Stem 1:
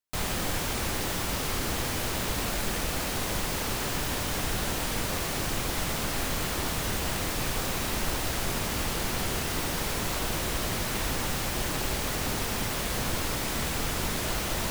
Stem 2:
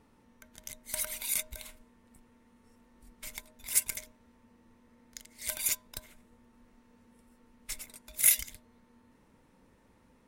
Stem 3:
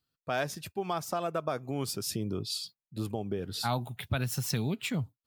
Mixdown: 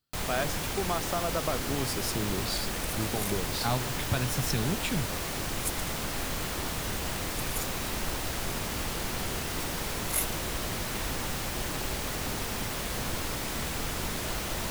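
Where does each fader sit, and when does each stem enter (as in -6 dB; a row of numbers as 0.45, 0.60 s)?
-3.0, -7.5, +0.5 dB; 0.00, 1.90, 0.00 s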